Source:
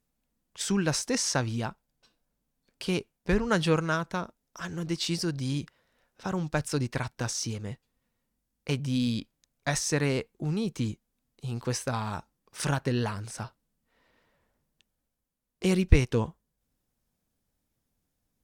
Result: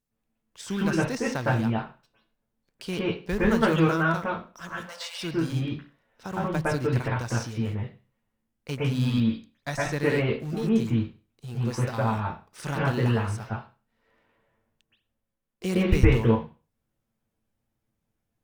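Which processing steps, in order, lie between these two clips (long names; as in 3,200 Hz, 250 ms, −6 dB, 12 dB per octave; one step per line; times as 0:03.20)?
de-essing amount 70%
in parallel at −7 dB: log-companded quantiser 4 bits
0:04.69–0:05.21: on the sum: linear-phase brick-wall high-pass 490 Hz
convolution reverb RT60 0.35 s, pre-delay 109 ms, DRR −7 dB
level −7 dB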